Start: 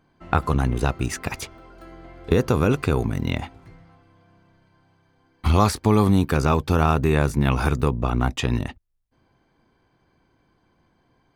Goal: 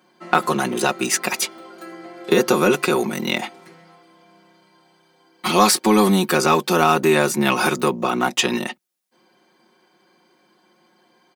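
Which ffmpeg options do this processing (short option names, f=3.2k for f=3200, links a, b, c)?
-filter_complex "[0:a]highpass=f=220:w=0.5412,highpass=f=220:w=1.3066,highshelf=f=2.8k:g=8,aecho=1:1:5.5:0.95,asplit=2[a][b];[b]asoftclip=type=tanh:threshold=-17dB,volume=-5.5dB[c];[a][c]amix=inputs=2:normalize=0"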